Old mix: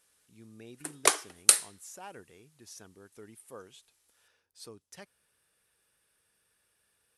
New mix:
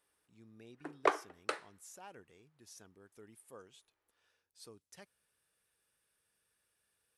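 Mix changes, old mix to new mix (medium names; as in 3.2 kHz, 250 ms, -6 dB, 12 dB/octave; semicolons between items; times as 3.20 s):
speech -6.5 dB; background: add low-pass 1.4 kHz 12 dB/octave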